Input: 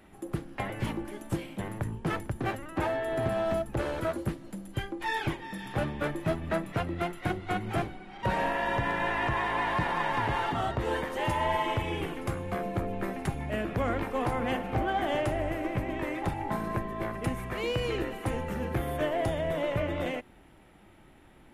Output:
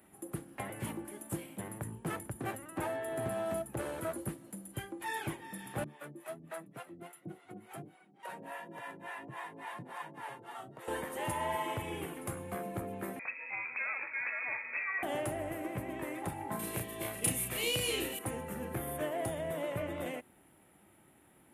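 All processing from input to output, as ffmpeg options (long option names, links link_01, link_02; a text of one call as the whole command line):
ffmpeg -i in.wav -filter_complex "[0:a]asettb=1/sr,asplit=3[link_01][link_02][link_03];[link_01]atrim=end=5.844[link_04];[link_02]atrim=start=5.84:end=10.88,asetpts=PTS-STARTPTS,afade=type=in:duration=0.004:curve=qsin,afade=type=out:start_time=5.036:duration=0.004:curve=qsin,highpass=frequency=130:width=0.5412,highpass=frequency=130:width=1.3066,flanger=delay=5.8:depth=2.9:regen=59:speed=1.4:shape=triangular,acrossover=split=480[link_05][link_06];[link_05]aeval=exprs='val(0)*(1-1/2+1/2*cos(2*PI*3.5*n/s))':channel_layout=same[link_07];[link_06]aeval=exprs='val(0)*(1-1/2-1/2*cos(2*PI*3.5*n/s))':channel_layout=same[link_08];[link_07][link_08]amix=inputs=2:normalize=0[link_09];[link_03]atrim=start=10.876[link_10];[link_04][link_09]acrossfade=duration=0.004:curve1=hsin:curve2=qsin[link_11];[link_11][link_10]acrossfade=duration=0.004:curve1=qsin:curve2=hsin,asettb=1/sr,asplit=3[link_12][link_13][link_14];[link_12]atrim=end=13.194[link_15];[link_13]atrim=start=13.19:end=15.03,asetpts=PTS-STARTPTS,afade=type=in:duration=0.004:curve=qsin,afade=type=out:start_time=1.836:duration=0.004:curve=qsin,highpass=120,lowpass=frequency=2300:width_type=q:width=0.5098,lowpass=frequency=2300:width_type=q:width=0.6013,lowpass=frequency=2300:width_type=q:width=0.9,lowpass=frequency=2300:width_type=q:width=2.563,afreqshift=-2700[link_16];[link_14]atrim=start=15.026[link_17];[link_15][link_16]acrossfade=duration=0.004:curve1=hsin:curve2=qsin[link_18];[link_18][link_17]acrossfade=duration=0.004:curve1=qsin:curve2=hsin,asettb=1/sr,asplit=3[link_19][link_20][link_21];[link_19]atrim=end=16.594[link_22];[link_20]atrim=start=16.59:end=18.19,asetpts=PTS-STARTPTS,afade=type=in:duration=0.004:curve=qsin,afade=type=out:start_time=1.596:duration=0.004:curve=qsin,highshelf=frequency=2200:width_type=q:width=1.5:gain=10.5,asplit=2[link_23][link_24];[link_24]adelay=34,volume=-3dB[link_25];[link_23][link_25]amix=inputs=2:normalize=0,atrim=end_sample=70560[link_26];[link_21]atrim=start=18.186[link_27];[link_22][link_26]acrossfade=duration=0.004:curve1=hsin:curve2=qsin[link_28];[link_28][link_27]acrossfade=duration=0.004:curve1=qsin:curve2=hsin,highpass=100,highshelf=frequency=7200:width_type=q:width=1.5:gain=11,volume=-6.5dB" out.wav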